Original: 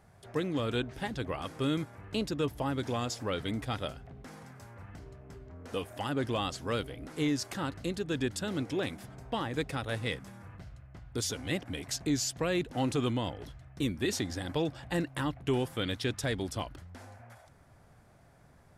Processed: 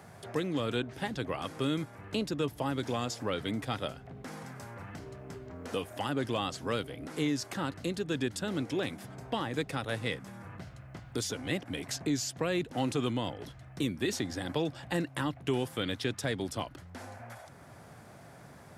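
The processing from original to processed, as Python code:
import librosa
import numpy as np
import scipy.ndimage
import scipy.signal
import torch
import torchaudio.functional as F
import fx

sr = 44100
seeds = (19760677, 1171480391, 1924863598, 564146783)

y = scipy.signal.sosfilt(scipy.signal.butter(2, 100.0, 'highpass', fs=sr, output='sos'), x)
y = fx.band_squash(y, sr, depth_pct=40)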